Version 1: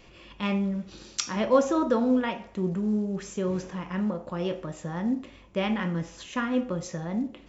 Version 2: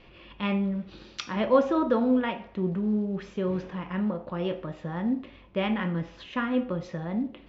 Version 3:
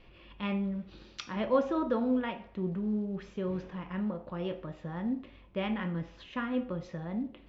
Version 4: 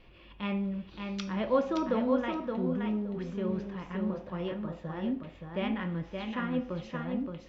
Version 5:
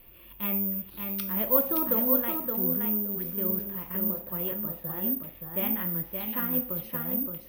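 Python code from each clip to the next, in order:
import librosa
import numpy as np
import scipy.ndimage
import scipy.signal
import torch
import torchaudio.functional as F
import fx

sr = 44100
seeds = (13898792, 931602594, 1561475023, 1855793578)

y1 = scipy.signal.sosfilt(scipy.signal.butter(4, 4000.0, 'lowpass', fs=sr, output='sos'), x)
y2 = fx.low_shelf(y1, sr, hz=70.0, db=7.5)
y2 = F.gain(torch.from_numpy(y2), -6.0).numpy()
y3 = fx.echo_feedback(y2, sr, ms=571, feedback_pct=16, wet_db=-5)
y4 = (np.kron(scipy.signal.resample_poly(y3, 1, 3), np.eye(3)[0]) * 3)[:len(y3)]
y4 = F.gain(torch.from_numpy(y4), -1.5).numpy()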